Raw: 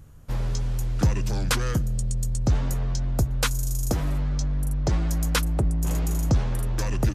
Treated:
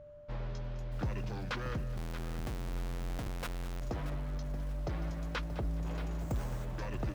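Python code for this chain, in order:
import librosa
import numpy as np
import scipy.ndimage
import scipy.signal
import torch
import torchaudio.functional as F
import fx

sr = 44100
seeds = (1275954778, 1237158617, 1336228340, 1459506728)

p1 = fx.low_shelf(x, sr, hz=300.0, db=-7.5)
p2 = p1 + 10.0 ** (-44.0 / 20.0) * np.sin(2.0 * np.pi * 590.0 * np.arange(len(p1)) / sr)
p3 = 10.0 ** (-27.0 / 20.0) * (np.abs((p2 / 10.0 ** (-27.0 / 20.0) + 3.0) % 4.0 - 2.0) - 1.0)
p4 = p2 + F.gain(torch.from_numpy(p3), -6.0).numpy()
p5 = fx.air_absorb(p4, sr, metres=240.0)
p6 = fx.schmitt(p5, sr, flips_db=-28.0, at=(1.97, 3.81))
p7 = p6 + fx.echo_feedback(p6, sr, ms=208, feedback_pct=34, wet_db=-14.5, dry=0)
p8 = fx.resample_bad(p7, sr, factor=6, down='none', up='hold', at=(6.2, 6.65))
p9 = fx.echo_crushed(p8, sr, ms=630, feedback_pct=35, bits=7, wet_db=-11.0)
y = F.gain(torch.from_numpy(p9), -9.0).numpy()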